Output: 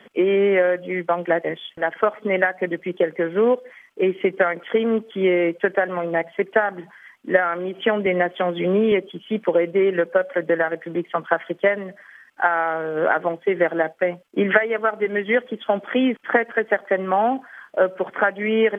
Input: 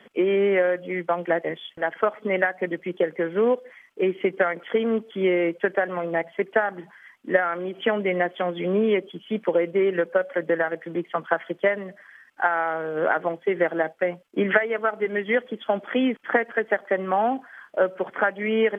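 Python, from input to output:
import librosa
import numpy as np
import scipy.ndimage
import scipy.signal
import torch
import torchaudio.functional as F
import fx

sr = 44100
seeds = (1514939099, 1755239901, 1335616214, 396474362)

y = fx.band_squash(x, sr, depth_pct=40, at=(8.06, 8.92))
y = y * librosa.db_to_amplitude(3.0)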